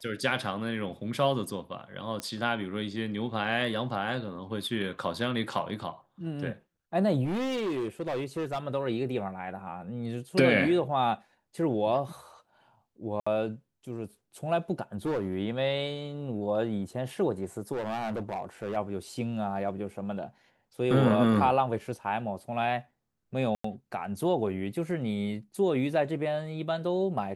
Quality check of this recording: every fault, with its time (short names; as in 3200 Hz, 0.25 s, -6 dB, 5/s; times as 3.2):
2.2 pop -19 dBFS
7.24–8.59 clipped -27.5 dBFS
13.2–13.27 gap 65 ms
15.05–15.36 clipped -25.5 dBFS
17.72–18.77 clipped -28.5 dBFS
23.55–23.64 gap 94 ms